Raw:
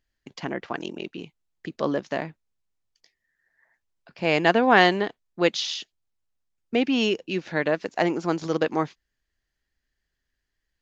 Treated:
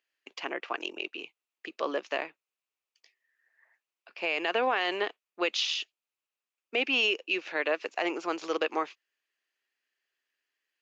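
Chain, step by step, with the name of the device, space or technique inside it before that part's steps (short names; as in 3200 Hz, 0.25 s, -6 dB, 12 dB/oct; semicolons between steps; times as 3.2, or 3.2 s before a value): laptop speaker (HPF 350 Hz 24 dB/oct; bell 1200 Hz +5 dB 0.4 oct; bell 2600 Hz +11 dB 0.52 oct; limiter -13.5 dBFS, peak gain reduction 13 dB); gain -4 dB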